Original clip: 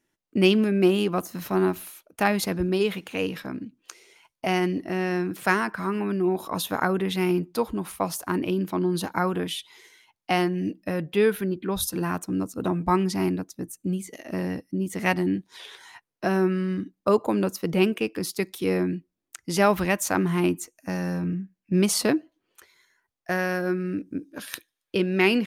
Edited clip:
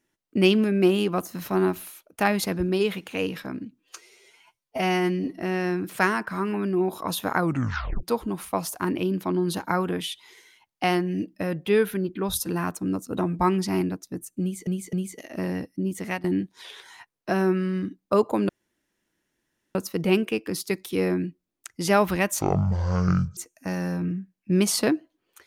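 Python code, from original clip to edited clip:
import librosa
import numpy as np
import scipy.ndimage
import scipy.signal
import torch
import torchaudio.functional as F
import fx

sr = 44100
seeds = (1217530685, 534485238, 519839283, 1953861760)

y = fx.edit(x, sr, fx.stretch_span(start_s=3.8, length_s=1.06, factor=1.5),
    fx.tape_stop(start_s=6.86, length_s=0.64),
    fx.repeat(start_s=13.88, length_s=0.26, count=3),
    fx.fade_out_to(start_s=14.8, length_s=0.39, curve='qsin', floor_db=-19.5),
    fx.insert_room_tone(at_s=17.44, length_s=1.26),
    fx.speed_span(start_s=20.1, length_s=0.49, speed=0.51), tone=tone)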